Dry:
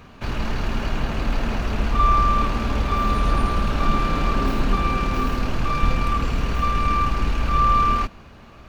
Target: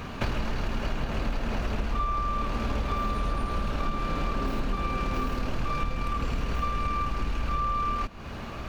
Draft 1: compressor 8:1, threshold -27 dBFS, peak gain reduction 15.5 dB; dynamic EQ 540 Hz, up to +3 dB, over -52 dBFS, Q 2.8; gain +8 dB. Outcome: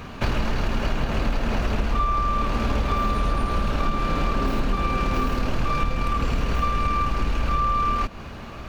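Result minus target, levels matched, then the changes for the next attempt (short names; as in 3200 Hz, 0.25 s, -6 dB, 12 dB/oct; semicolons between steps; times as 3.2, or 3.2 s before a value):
compressor: peak gain reduction -5.5 dB
change: compressor 8:1, threshold -33.5 dBFS, peak gain reduction 21 dB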